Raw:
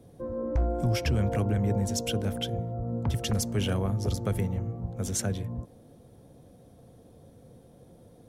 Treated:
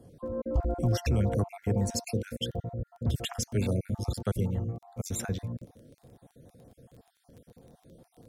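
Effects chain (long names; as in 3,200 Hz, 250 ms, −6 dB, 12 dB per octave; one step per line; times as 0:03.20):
time-frequency cells dropped at random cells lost 39%
surface crackle 13 per second −46 dBFS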